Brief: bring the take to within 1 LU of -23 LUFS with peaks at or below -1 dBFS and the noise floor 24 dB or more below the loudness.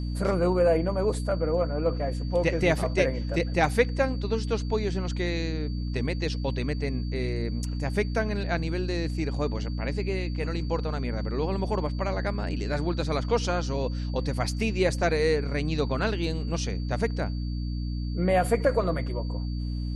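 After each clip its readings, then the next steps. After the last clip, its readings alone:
hum 60 Hz; highest harmonic 300 Hz; hum level -28 dBFS; steady tone 4.6 kHz; tone level -48 dBFS; loudness -28.0 LUFS; peak level -8.5 dBFS; loudness target -23.0 LUFS
-> hum notches 60/120/180/240/300 Hz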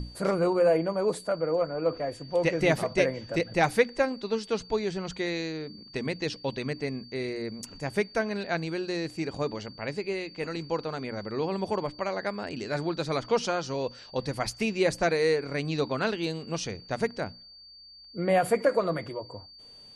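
hum not found; steady tone 4.6 kHz; tone level -48 dBFS
-> band-stop 4.6 kHz, Q 30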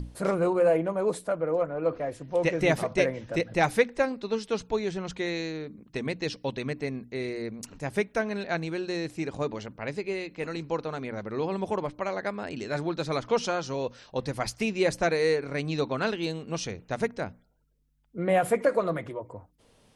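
steady tone not found; loudness -29.5 LUFS; peak level -9.5 dBFS; loudness target -23.0 LUFS
-> trim +6.5 dB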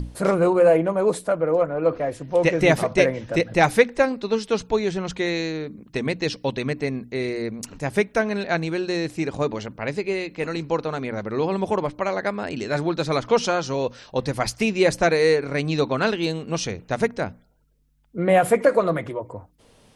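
loudness -23.0 LUFS; peak level -3.0 dBFS; noise floor -56 dBFS

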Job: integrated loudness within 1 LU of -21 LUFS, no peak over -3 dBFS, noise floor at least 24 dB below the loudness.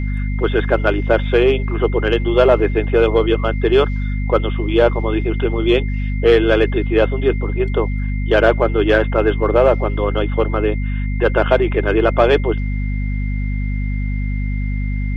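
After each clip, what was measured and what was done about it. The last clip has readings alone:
hum 50 Hz; highest harmonic 250 Hz; hum level -18 dBFS; steady tone 2.1 kHz; tone level -34 dBFS; loudness -17.0 LUFS; peak level -1.5 dBFS; loudness target -21.0 LUFS
-> de-hum 50 Hz, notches 5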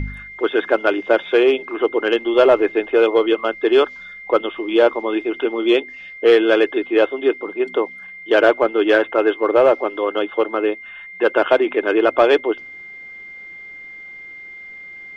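hum not found; steady tone 2.1 kHz; tone level -34 dBFS
-> band-stop 2.1 kHz, Q 30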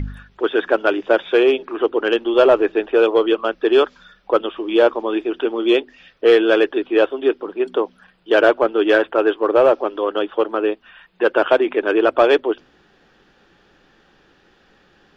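steady tone not found; loudness -17.5 LUFS; peak level -2.0 dBFS; loudness target -21.0 LUFS
-> trim -3.5 dB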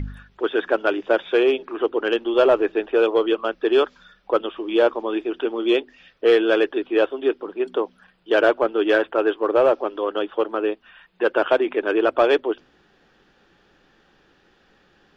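loudness -21.0 LUFS; peak level -5.5 dBFS; noise floor -60 dBFS

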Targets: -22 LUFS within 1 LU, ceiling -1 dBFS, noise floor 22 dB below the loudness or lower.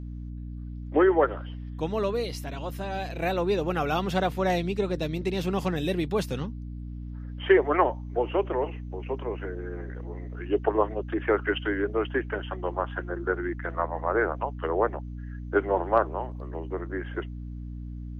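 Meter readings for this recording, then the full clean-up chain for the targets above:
hum 60 Hz; highest harmonic 300 Hz; hum level -34 dBFS; loudness -28.0 LUFS; peak level -7.5 dBFS; loudness target -22.0 LUFS
-> hum notches 60/120/180/240/300 Hz; trim +6 dB

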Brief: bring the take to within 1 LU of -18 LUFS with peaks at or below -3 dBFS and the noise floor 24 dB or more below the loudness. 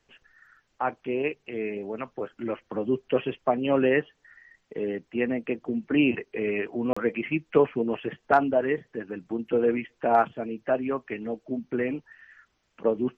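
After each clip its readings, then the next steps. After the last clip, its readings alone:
dropouts 1; longest dropout 35 ms; loudness -27.5 LUFS; peak level -8.0 dBFS; loudness target -18.0 LUFS
-> interpolate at 6.93 s, 35 ms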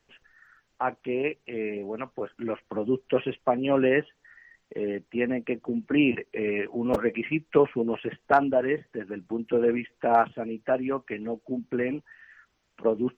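dropouts 0; loudness -27.5 LUFS; peak level -8.0 dBFS; loudness target -18.0 LUFS
-> trim +9.5 dB; peak limiter -3 dBFS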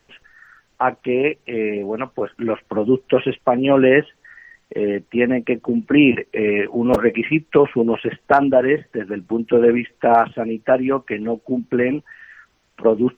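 loudness -18.5 LUFS; peak level -3.0 dBFS; noise floor -63 dBFS

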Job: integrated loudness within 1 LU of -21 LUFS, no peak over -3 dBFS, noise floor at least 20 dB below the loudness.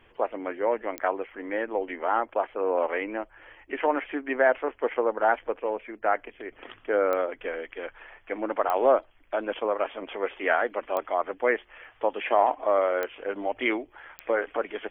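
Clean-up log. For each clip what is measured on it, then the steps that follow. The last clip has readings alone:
clicks found 6; loudness -27.5 LUFS; peak level -8.0 dBFS; loudness target -21.0 LUFS
-> de-click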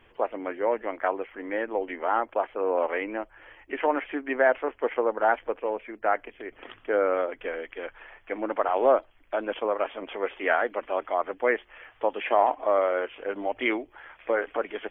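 clicks found 0; loudness -27.5 LUFS; peak level -8.0 dBFS; loudness target -21.0 LUFS
-> trim +6.5 dB; peak limiter -3 dBFS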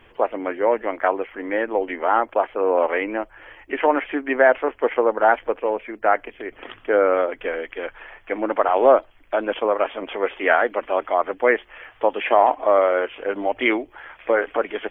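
loudness -21.0 LUFS; peak level -3.0 dBFS; noise floor -52 dBFS

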